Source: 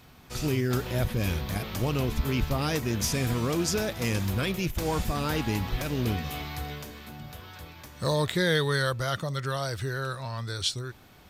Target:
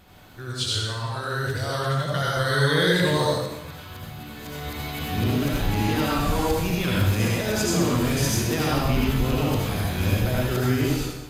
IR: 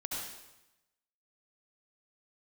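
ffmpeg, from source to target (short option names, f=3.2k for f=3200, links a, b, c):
-filter_complex "[0:a]areverse,bandreject=f=5.6k:w=11[a];[1:a]atrim=start_sample=2205[b];[a][b]afir=irnorm=-1:irlink=0,volume=3dB"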